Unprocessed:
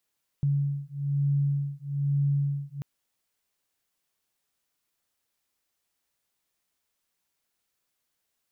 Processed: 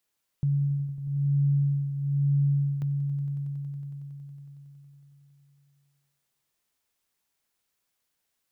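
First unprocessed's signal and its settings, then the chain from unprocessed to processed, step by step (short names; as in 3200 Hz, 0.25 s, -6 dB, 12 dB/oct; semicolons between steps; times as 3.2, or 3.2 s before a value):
beating tones 141 Hz, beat 1.1 Hz, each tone -27 dBFS 2.39 s
on a send: swelling echo 92 ms, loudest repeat 5, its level -17 dB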